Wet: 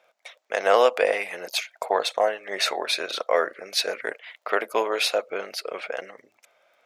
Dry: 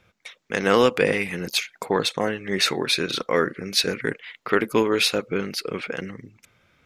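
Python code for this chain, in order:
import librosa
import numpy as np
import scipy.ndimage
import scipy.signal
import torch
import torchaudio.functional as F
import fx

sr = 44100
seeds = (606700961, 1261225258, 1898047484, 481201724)

y = fx.dmg_crackle(x, sr, seeds[0], per_s=19.0, level_db=-48.0)
y = fx.highpass_res(y, sr, hz=640.0, q=4.9)
y = y * 10.0 ** (-3.5 / 20.0)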